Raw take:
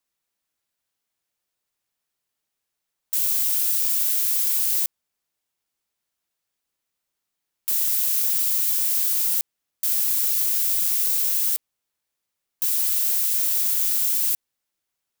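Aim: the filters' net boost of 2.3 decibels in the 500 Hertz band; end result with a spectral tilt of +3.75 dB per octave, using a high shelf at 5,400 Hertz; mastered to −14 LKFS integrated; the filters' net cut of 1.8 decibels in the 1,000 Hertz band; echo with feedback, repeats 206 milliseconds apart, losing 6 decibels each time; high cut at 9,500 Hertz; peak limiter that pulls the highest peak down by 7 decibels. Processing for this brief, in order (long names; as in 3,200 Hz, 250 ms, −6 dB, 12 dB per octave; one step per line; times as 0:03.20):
low-pass filter 9,500 Hz
parametric band 500 Hz +4 dB
parametric band 1,000 Hz −3 dB
high-shelf EQ 5,400 Hz −5 dB
brickwall limiter −28 dBFS
repeating echo 206 ms, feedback 50%, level −6 dB
level +20.5 dB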